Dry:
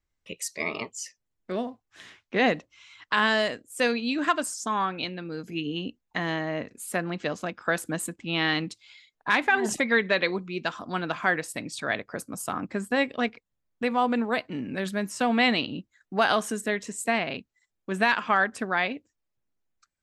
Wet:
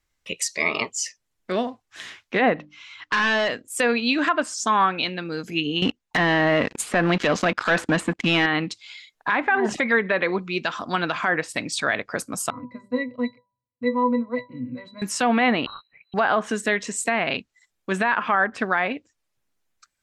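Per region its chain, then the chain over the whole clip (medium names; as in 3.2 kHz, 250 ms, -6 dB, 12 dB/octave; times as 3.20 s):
2.54–3.68 s: hum notches 50/100/150/200/250/300 Hz + hard clipper -25.5 dBFS + distance through air 100 m
5.82–8.46 s: waveshaping leveller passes 3 + compression 12:1, threshold -21 dBFS
12.50–15.02 s: bass shelf 220 Hz +5.5 dB + pitch-class resonator B, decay 0.13 s + de-hum 196.4 Hz, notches 5
15.66–16.14 s: inverse Chebyshev band-stop 230–500 Hz, stop band 60 dB + frequency inversion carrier 4 kHz
whole clip: tilt shelf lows -3.5 dB, about 710 Hz; low-pass that closes with the level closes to 1.5 kHz, closed at -18.5 dBFS; loudness maximiser +16 dB; trim -9 dB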